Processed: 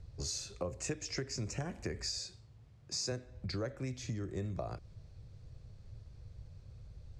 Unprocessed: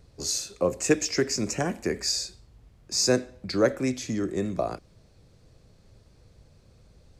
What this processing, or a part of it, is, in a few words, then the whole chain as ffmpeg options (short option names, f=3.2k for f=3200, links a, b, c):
jukebox: -filter_complex "[0:a]asettb=1/sr,asplit=3[a][b][c];[a]atrim=end=2.184[d];[b]atrim=start=2.18:end=3.12,asetpts=PTS-STARTPTS,afade=t=in:d=0.004:c=qsin,afade=t=out:st=0.936:d=0.004:c=qsin,highpass=130[e];[c]atrim=start=3.116[f];[d][e]acrossfade=d=0.004:c1=hsin:c2=qsin[g];[g][f]acrossfade=d=0.004:c1=qsin:c2=hsin,lowpass=7.5k,lowshelf=f=160:t=q:w=1.5:g=9.5,acompressor=threshold=-30dB:ratio=5,volume=-5.5dB"